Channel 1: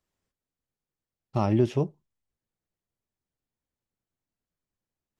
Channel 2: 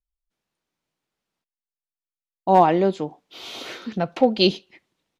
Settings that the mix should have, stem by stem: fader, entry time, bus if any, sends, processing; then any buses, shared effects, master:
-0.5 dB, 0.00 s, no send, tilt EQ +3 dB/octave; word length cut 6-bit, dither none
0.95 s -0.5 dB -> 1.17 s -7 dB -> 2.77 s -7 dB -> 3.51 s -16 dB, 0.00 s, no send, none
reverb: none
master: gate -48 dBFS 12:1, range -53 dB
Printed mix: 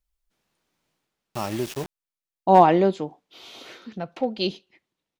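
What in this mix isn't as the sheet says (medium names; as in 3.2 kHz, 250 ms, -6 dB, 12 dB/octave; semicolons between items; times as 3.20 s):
stem 2 -0.5 dB -> +7.5 dB; master: missing gate -48 dBFS 12:1, range -53 dB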